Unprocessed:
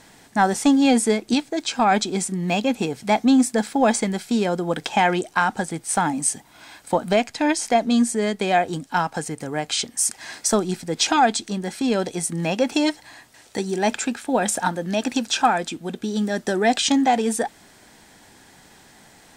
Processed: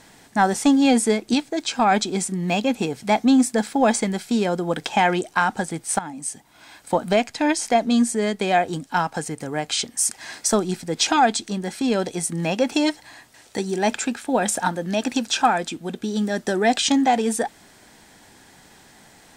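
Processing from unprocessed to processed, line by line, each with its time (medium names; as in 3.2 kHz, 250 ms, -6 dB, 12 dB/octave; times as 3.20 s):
5.99–6.97 s: fade in, from -14 dB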